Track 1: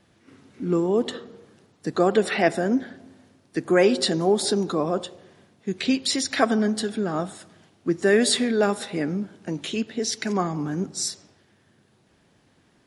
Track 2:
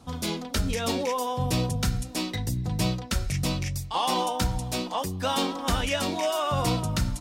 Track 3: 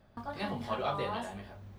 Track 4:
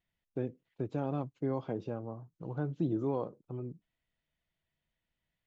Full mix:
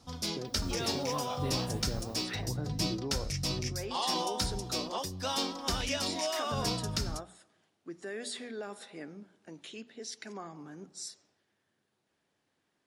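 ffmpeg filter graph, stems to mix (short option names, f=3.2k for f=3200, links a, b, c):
-filter_complex "[0:a]alimiter=limit=-14.5dB:level=0:latency=1:release=33,lowshelf=f=240:g=-10.5,volume=-14.5dB[a];[1:a]equalizer=f=5.2k:w=2:g=11.5,volume=-8dB[b];[2:a]aemphasis=mode=production:type=75fm,acompressor=threshold=-46dB:ratio=2,adelay=450,volume=-0.5dB,asplit=2[c][d];[d]volume=-15.5dB[e];[3:a]alimiter=level_in=6.5dB:limit=-24dB:level=0:latency=1:release=195,volume=-6.5dB,volume=1.5dB,asplit=2[f][g];[g]apad=whole_len=567387[h];[a][h]sidechaincompress=threshold=-47dB:ratio=8:attack=9.7:release=165[i];[e]aecho=0:1:320|640|960|1280|1600:1|0.39|0.152|0.0593|0.0231[j];[i][b][c][f][j]amix=inputs=5:normalize=0,bandreject=f=60:t=h:w=6,bandreject=f=120:t=h:w=6,bandreject=f=180:t=h:w=6,bandreject=f=240:t=h:w=6"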